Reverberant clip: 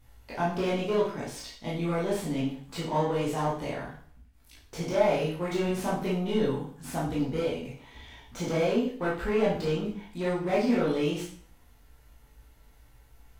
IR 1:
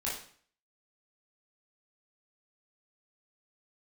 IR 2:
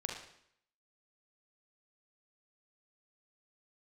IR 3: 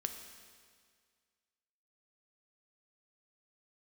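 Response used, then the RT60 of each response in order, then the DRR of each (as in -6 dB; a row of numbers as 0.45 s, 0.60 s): 1; 0.50 s, 0.70 s, 1.9 s; -7.0 dB, 0.0 dB, 6.0 dB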